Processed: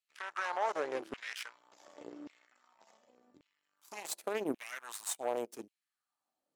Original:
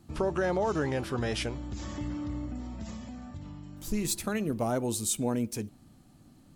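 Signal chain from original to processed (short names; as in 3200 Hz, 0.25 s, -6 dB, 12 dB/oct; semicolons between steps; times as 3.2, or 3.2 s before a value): added harmonics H 3 -21 dB, 4 -22 dB, 7 -21 dB, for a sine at -16.5 dBFS; LFO high-pass saw down 0.88 Hz 280–2600 Hz; gain -5.5 dB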